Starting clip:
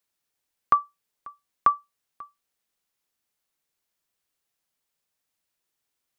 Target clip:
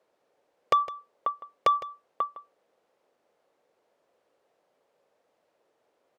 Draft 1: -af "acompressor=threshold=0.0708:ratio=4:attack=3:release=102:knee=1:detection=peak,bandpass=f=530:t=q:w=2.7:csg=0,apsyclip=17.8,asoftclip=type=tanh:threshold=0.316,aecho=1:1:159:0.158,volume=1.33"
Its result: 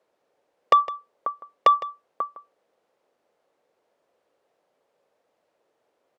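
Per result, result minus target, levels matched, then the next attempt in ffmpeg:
compression: peak gain reduction -5.5 dB; saturation: distortion -6 dB
-af "acompressor=threshold=0.0316:ratio=4:attack=3:release=102:knee=1:detection=peak,bandpass=f=530:t=q:w=2.7:csg=0,apsyclip=17.8,asoftclip=type=tanh:threshold=0.316,aecho=1:1:159:0.158,volume=1.33"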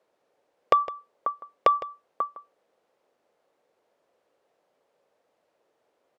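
saturation: distortion -4 dB
-af "acompressor=threshold=0.0316:ratio=4:attack=3:release=102:knee=1:detection=peak,bandpass=f=530:t=q:w=2.7:csg=0,apsyclip=17.8,asoftclip=type=tanh:threshold=0.141,aecho=1:1:159:0.158,volume=1.33"

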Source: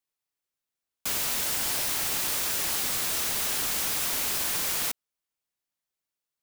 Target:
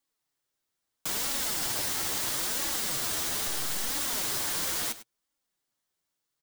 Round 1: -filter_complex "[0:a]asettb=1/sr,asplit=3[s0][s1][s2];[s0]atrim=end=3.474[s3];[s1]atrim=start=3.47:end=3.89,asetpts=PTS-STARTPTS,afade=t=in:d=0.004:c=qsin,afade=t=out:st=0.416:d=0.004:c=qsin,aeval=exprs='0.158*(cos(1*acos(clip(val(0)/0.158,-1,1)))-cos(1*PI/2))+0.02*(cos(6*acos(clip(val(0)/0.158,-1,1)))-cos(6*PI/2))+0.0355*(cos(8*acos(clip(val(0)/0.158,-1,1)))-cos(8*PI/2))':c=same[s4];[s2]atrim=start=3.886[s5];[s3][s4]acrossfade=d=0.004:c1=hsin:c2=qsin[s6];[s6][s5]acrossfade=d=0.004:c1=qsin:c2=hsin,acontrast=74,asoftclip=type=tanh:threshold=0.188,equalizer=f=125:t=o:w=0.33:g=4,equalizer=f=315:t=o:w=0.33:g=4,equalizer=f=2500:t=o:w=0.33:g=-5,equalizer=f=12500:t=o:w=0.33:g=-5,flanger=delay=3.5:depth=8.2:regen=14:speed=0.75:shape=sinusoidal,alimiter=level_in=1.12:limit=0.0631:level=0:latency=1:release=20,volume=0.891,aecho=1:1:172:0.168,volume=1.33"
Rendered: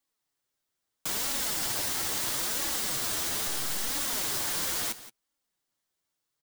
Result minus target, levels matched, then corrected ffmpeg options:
echo 71 ms late
-filter_complex "[0:a]asettb=1/sr,asplit=3[s0][s1][s2];[s0]atrim=end=3.474[s3];[s1]atrim=start=3.47:end=3.89,asetpts=PTS-STARTPTS,afade=t=in:d=0.004:c=qsin,afade=t=out:st=0.416:d=0.004:c=qsin,aeval=exprs='0.158*(cos(1*acos(clip(val(0)/0.158,-1,1)))-cos(1*PI/2))+0.02*(cos(6*acos(clip(val(0)/0.158,-1,1)))-cos(6*PI/2))+0.0355*(cos(8*acos(clip(val(0)/0.158,-1,1)))-cos(8*PI/2))':c=same[s4];[s2]atrim=start=3.886[s5];[s3][s4]acrossfade=d=0.004:c1=hsin:c2=qsin[s6];[s6][s5]acrossfade=d=0.004:c1=qsin:c2=hsin,acontrast=74,asoftclip=type=tanh:threshold=0.188,equalizer=f=125:t=o:w=0.33:g=4,equalizer=f=315:t=o:w=0.33:g=4,equalizer=f=2500:t=o:w=0.33:g=-5,equalizer=f=12500:t=o:w=0.33:g=-5,flanger=delay=3.5:depth=8.2:regen=14:speed=0.75:shape=sinusoidal,alimiter=level_in=1.12:limit=0.0631:level=0:latency=1:release=20,volume=0.891,aecho=1:1:101:0.168,volume=1.33"

